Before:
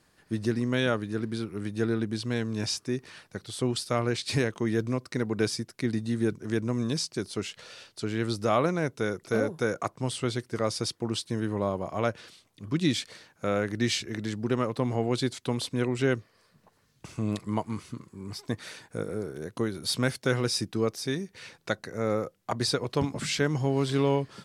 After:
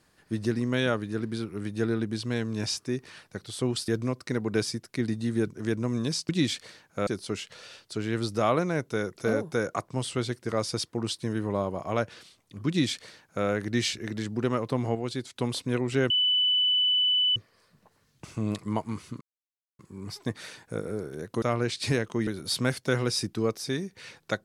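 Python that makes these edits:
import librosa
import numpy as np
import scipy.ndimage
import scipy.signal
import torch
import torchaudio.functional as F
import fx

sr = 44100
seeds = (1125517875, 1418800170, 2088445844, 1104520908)

y = fx.edit(x, sr, fx.move(start_s=3.88, length_s=0.85, to_s=19.65),
    fx.duplicate(start_s=12.75, length_s=0.78, to_s=7.14),
    fx.clip_gain(start_s=15.02, length_s=0.41, db=-5.0),
    fx.insert_tone(at_s=16.17, length_s=1.26, hz=2990.0, db=-20.5),
    fx.insert_silence(at_s=18.02, length_s=0.58), tone=tone)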